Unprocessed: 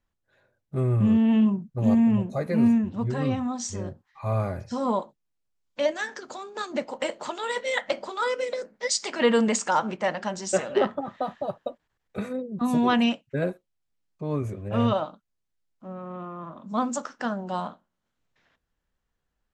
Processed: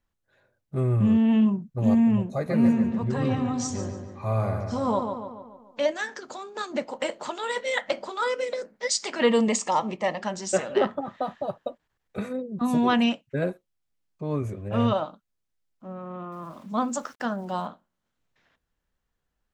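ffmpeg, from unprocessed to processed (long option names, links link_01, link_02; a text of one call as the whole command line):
ffmpeg -i in.wav -filter_complex "[0:a]asettb=1/sr,asplit=3[link_01][link_02][link_03];[link_01]atrim=end=2.314[link_04];[link_02]atrim=start=2.31:end=5.86,asetpts=PTS-STARTPTS,afade=type=in:duration=0.004:curve=qsin,afade=type=out:start_time=3.546:duration=0.004:curve=qsin,asplit=2[link_05][link_06];[link_06]adelay=144,lowpass=frequency=3900:poles=1,volume=-6dB,asplit=2[link_07][link_08];[link_08]adelay=144,lowpass=frequency=3900:poles=1,volume=0.53,asplit=2[link_09][link_10];[link_10]adelay=144,lowpass=frequency=3900:poles=1,volume=0.53,asplit=2[link_11][link_12];[link_12]adelay=144,lowpass=frequency=3900:poles=1,volume=0.53,asplit=2[link_13][link_14];[link_14]adelay=144,lowpass=frequency=3900:poles=1,volume=0.53,asplit=2[link_15][link_16];[link_16]adelay=144,lowpass=frequency=3900:poles=1,volume=0.53,asplit=2[link_17][link_18];[link_18]adelay=144,lowpass=frequency=3900:poles=1,volume=0.53[link_19];[link_05][link_07][link_09][link_11][link_13][link_15][link_17][link_19]amix=inputs=8:normalize=0,atrim=end_sample=156555[link_20];[link_03]atrim=start=5.856[link_21];[link_04][link_20]acrossfade=duration=0.004:curve1=hsin:curve2=qsin[link_22];[link_22][link_21]acrossfade=duration=0.004:curve1=qsin:curve2=hsin,asettb=1/sr,asplit=3[link_23][link_24][link_25];[link_23]atrim=end=9.274[link_26];[link_24]atrim=start=9.27:end=10.22,asetpts=PTS-STARTPTS,afade=type=in:duration=0.004:curve=qsin,afade=type=out:start_time=0.946:duration=0.004:curve=qsin,asuperstop=centerf=1500:order=4:qfactor=3.4[link_27];[link_25]atrim=start=10.216[link_28];[link_26][link_27]acrossfade=duration=0.004:curve1=hsin:curve2=qsin[link_29];[link_29][link_28]acrossfade=duration=0.004:curve1=qsin:curve2=hsin,asettb=1/sr,asplit=3[link_30][link_31][link_32];[link_30]atrim=end=16.324[link_33];[link_31]atrim=start=16.32:end=17.66,asetpts=PTS-STARTPTS,afade=type=in:duration=0.004:curve=qsin,afade=type=out:start_time=1.336:duration=0.004:curve=qsin,aeval=exprs='val(0)*gte(abs(val(0)),0.00237)':channel_layout=same[link_34];[link_32]atrim=start=17.656[link_35];[link_33][link_34]acrossfade=duration=0.004:curve1=hsin:curve2=qsin[link_36];[link_36][link_35]acrossfade=duration=0.004:curve1=qsin:curve2=hsin" out.wav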